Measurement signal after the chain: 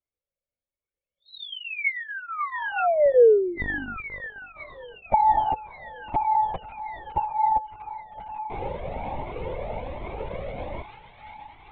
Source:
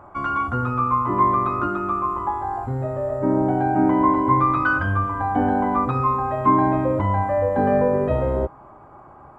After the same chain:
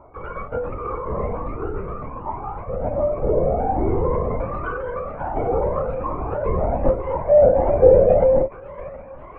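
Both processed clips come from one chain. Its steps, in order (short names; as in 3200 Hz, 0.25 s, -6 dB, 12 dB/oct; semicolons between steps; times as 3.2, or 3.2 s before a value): HPF 210 Hz 12 dB/oct; bell 460 Hz +13.5 dB 2.1 oct; small resonant body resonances 520/2200 Hz, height 16 dB, ringing for 25 ms; on a send: thin delay 0.554 s, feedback 78%, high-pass 1600 Hz, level -7 dB; on the sum: LPC vocoder at 8 kHz whisper; cascading flanger rising 1.3 Hz; gain -12 dB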